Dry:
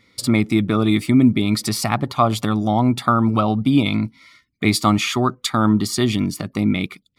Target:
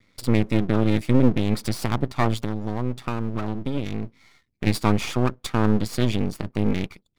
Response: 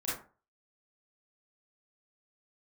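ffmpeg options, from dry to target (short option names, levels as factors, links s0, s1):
-filter_complex "[0:a]bass=f=250:g=6,treble=f=4000:g=-4,asettb=1/sr,asplit=3[s0][s1][s2];[s0]atrim=end=2.404[s3];[s1]atrim=start=2.4:end=4.67,asetpts=PTS-STARTPTS,afade=t=in:d=0.004:c=qsin,afade=t=out:st=2.266:d=0.004:c=qsin,acompressor=threshold=0.0794:ratio=2[s4];[s2]atrim=start=4.666[s5];[s3][s4]acrossfade=d=0.004:c1=hsin:c2=qsin[s6];[s6][s5]acrossfade=d=0.004:c1=qsin:c2=hsin,aeval=exprs='max(val(0),0)':c=same,volume=0.708"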